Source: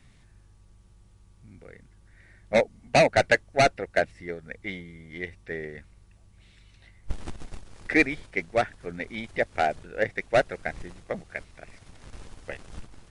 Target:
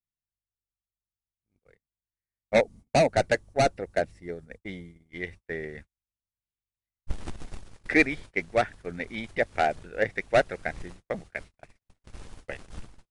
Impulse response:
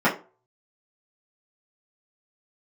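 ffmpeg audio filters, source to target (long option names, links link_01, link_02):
-filter_complex "[0:a]asettb=1/sr,asplit=3[link_01][link_02][link_03];[link_01]atrim=end=2.614[link_04];[link_02]atrim=start=2.61:end=5.09,asetpts=PTS-STARTPTS,afade=type=in:duration=0.004:curve=qsin,afade=type=out:start_time=2.476:duration=0.004:curve=qsin,equalizer=frequency=2100:width_type=o:width=2.3:gain=-7.5[link_05];[link_03]atrim=start=5.086[link_06];[link_04][link_05]acrossfade=duration=0.004:curve1=hsin:curve2=qsin[link_07];[link_07][link_06]acrossfade=duration=0.004:curve1=qsin:curve2=hsin,agate=range=-45dB:threshold=-43dB:ratio=16:detection=peak"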